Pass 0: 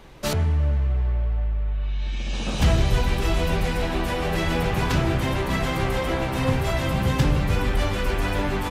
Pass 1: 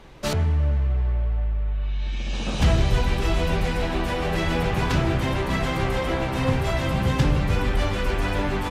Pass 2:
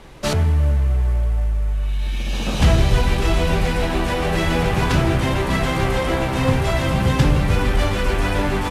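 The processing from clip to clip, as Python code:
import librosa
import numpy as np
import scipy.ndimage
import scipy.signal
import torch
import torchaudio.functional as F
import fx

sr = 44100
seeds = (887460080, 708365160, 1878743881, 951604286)

y1 = fx.high_shelf(x, sr, hz=12000.0, db=-10.5)
y2 = fx.cvsd(y1, sr, bps=64000)
y2 = y2 * librosa.db_to_amplitude(4.5)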